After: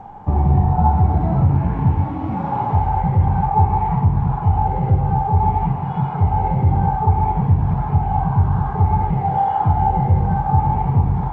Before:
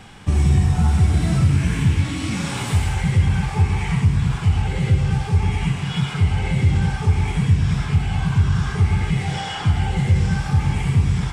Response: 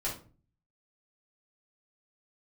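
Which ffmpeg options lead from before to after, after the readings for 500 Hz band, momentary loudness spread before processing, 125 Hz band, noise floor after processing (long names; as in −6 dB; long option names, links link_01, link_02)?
+4.0 dB, 5 LU, +0.5 dB, −25 dBFS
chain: -filter_complex "[0:a]aeval=exprs='0.562*(cos(1*acos(clip(val(0)/0.562,-1,1)))-cos(1*PI/2))+0.00355*(cos(6*acos(clip(val(0)/0.562,-1,1)))-cos(6*PI/2))+0.00891*(cos(7*acos(clip(val(0)/0.562,-1,1)))-cos(7*PI/2))':channel_layout=same,lowpass=frequency=840:width_type=q:width=6.6,asplit=2[link_01][link_02];[1:a]atrim=start_sample=2205[link_03];[link_02][link_03]afir=irnorm=-1:irlink=0,volume=-22dB[link_04];[link_01][link_04]amix=inputs=2:normalize=0" -ar 16000 -c:a g722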